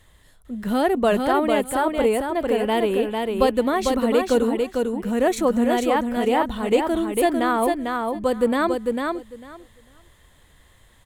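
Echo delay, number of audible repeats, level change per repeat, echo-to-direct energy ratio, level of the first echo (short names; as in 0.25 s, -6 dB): 0.449 s, 2, -16.0 dB, -4.0 dB, -4.0 dB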